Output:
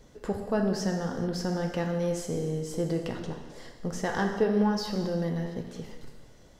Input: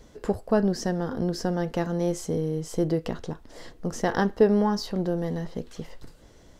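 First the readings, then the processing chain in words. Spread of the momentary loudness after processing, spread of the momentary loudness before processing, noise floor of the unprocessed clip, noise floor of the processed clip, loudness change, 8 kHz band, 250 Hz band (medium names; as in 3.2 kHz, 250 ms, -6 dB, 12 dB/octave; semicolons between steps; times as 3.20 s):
13 LU, 15 LU, -53 dBFS, -53 dBFS, -3.0 dB, -1.5 dB, -3.0 dB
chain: dynamic bell 2.3 kHz, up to +4 dB, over -45 dBFS, Q 0.9; in parallel at -2.5 dB: peak limiter -19.5 dBFS, peak gain reduction 12 dB; on the sum: gated-style reverb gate 460 ms falling, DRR 3 dB; trim -8.5 dB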